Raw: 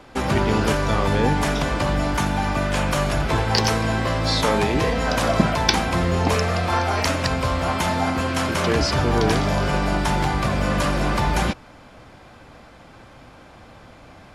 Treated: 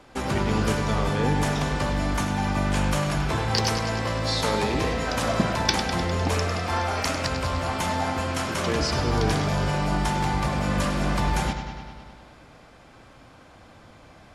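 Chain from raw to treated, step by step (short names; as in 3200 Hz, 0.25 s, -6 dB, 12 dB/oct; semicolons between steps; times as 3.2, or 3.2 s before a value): bell 8000 Hz +3.5 dB 1.2 oct; on a send: analogue delay 0.101 s, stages 4096, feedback 70%, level -8.5 dB; on the sum: gain -5.5 dB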